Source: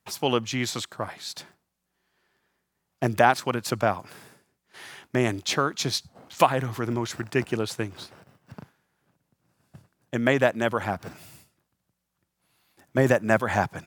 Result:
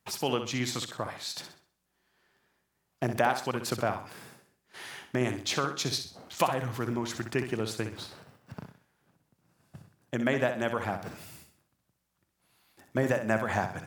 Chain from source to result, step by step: compression 1.5:1, threshold -35 dBFS, peak gain reduction 8.5 dB; flutter echo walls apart 10.9 m, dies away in 0.43 s

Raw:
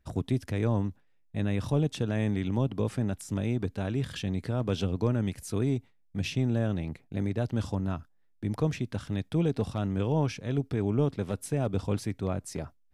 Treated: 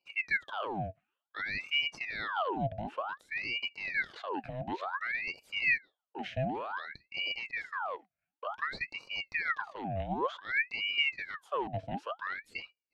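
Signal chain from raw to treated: two resonant band-passes 770 Hz, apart 2.9 oct; ring modulator with a swept carrier 1.5 kHz, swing 75%, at 0.55 Hz; trim +7.5 dB

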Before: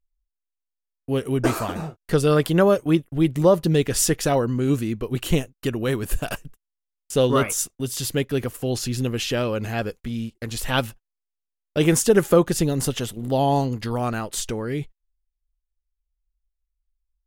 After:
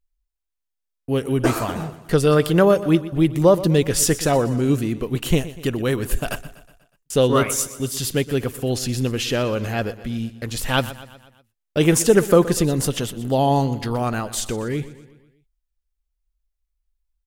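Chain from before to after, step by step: feedback delay 122 ms, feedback 53%, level -16 dB; trim +2 dB

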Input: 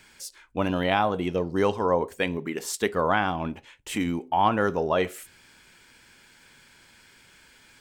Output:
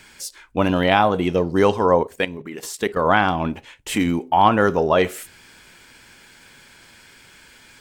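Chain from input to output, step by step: 2.02–3.07 s: level held to a coarse grid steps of 13 dB; trim +7 dB; AAC 96 kbps 44.1 kHz

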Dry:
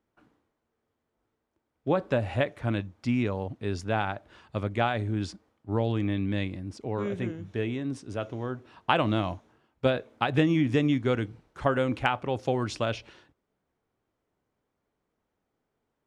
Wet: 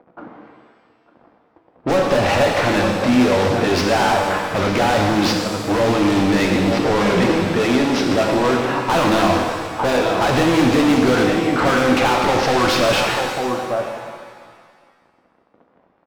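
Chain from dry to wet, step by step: CVSD coder 32 kbps; band-stop 410 Hz, Q 12; on a send: delay 899 ms -21 dB; on the sum: level-controlled noise filter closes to 870 Hz, open at -26.5 dBFS; overdrive pedal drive 36 dB, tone 1.3 kHz, clips at -12 dBFS; treble shelf 3.7 kHz +8.5 dB; in parallel at +2 dB: level held to a coarse grid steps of 15 dB; on the sum: pitch-shifted reverb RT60 1.7 s, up +7 st, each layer -8 dB, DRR 1.5 dB; trim -1 dB

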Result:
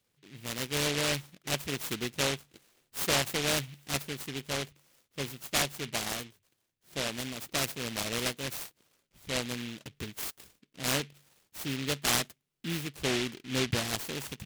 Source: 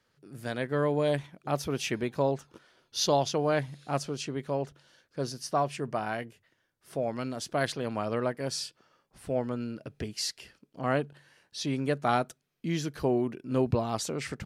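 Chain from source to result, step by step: dynamic bell 1.2 kHz, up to +5 dB, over -44 dBFS, Q 1.4; delay time shaken by noise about 2.6 kHz, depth 0.31 ms; trim -4 dB

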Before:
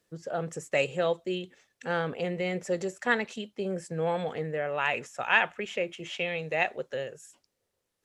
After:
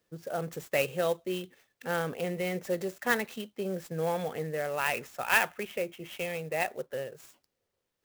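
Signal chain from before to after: 5.66–7.14 s: treble shelf 3.4 kHz -10.5 dB; sampling jitter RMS 0.027 ms; trim -1.5 dB

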